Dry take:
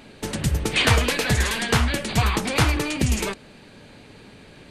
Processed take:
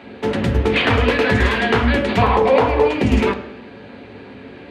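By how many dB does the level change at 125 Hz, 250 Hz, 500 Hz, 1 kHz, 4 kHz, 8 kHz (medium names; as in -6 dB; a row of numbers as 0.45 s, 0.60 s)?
+2.0 dB, +7.5 dB, +12.0 dB, +8.5 dB, -0.5 dB, under -10 dB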